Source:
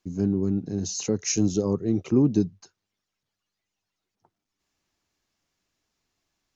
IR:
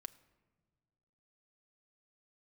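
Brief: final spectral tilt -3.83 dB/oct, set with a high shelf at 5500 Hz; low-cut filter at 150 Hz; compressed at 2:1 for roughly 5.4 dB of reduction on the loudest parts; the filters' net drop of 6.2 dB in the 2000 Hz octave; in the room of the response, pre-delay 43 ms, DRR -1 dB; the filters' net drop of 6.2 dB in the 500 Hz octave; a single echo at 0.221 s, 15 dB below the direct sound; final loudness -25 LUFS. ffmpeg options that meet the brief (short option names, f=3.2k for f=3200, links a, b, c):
-filter_complex "[0:a]highpass=150,equalizer=f=500:t=o:g=-8.5,equalizer=f=2k:t=o:g=-8.5,highshelf=f=5.5k:g=3.5,acompressor=threshold=-28dB:ratio=2,aecho=1:1:221:0.178,asplit=2[a][b];[1:a]atrim=start_sample=2205,adelay=43[c];[b][c]afir=irnorm=-1:irlink=0,volume=6.5dB[d];[a][d]amix=inputs=2:normalize=0,volume=2.5dB"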